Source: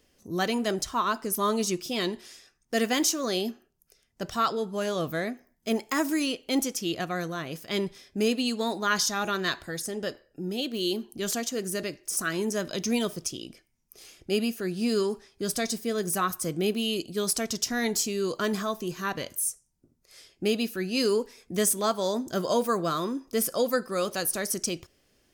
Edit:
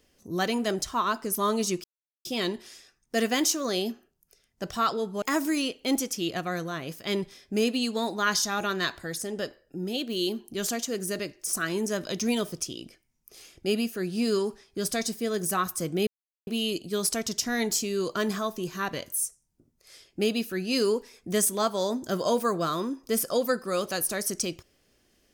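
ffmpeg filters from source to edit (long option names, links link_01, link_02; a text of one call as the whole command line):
ffmpeg -i in.wav -filter_complex "[0:a]asplit=4[link_01][link_02][link_03][link_04];[link_01]atrim=end=1.84,asetpts=PTS-STARTPTS,afade=type=out:start_time=1.836:duration=0.004:curve=hsin,apad=pad_dur=0.41[link_05];[link_02]atrim=start=1.84:end=4.812,asetpts=PTS-STARTPTS,afade=type=in:duration=0.004:curve=hsin[link_06];[link_03]atrim=start=5.858:end=16.71,asetpts=PTS-STARTPTS,afade=type=out:start_time=10.848:duration=0.004:curve=hsin,apad=pad_dur=0.4[link_07];[link_04]atrim=start=16.71,asetpts=PTS-STARTPTS,afade=type=in:duration=0.004:curve=hsin[link_08];[link_05][link_06]concat=n=2:v=0:a=1[link_09];[link_07][link_08]concat=n=2:v=0:a=1[link_10];[link_09][link_10]acrossfade=duration=0.004:curve1=hsin:curve2=hsin" out.wav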